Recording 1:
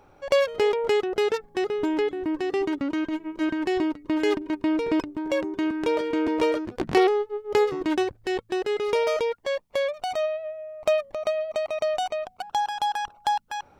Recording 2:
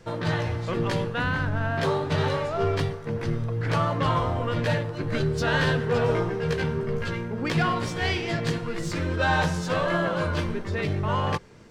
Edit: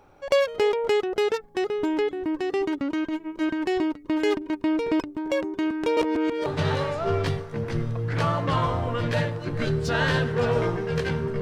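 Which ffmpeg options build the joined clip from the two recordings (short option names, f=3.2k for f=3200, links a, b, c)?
-filter_complex "[0:a]apad=whole_dur=11.41,atrim=end=11.41,asplit=2[a][b];[a]atrim=end=5.972[c];[b]atrim=start=5.968:end=6.462,asetpts=PTS-STARTPTS,areverse[d];[1:a]atrim=start=1.988:end=6.94[e];[c][d]acrossfade=d=0.004:c1=hsin:c2=hsin[f];[f][e]acrossfade=d=0.004:c1=hsin:c2=hsin"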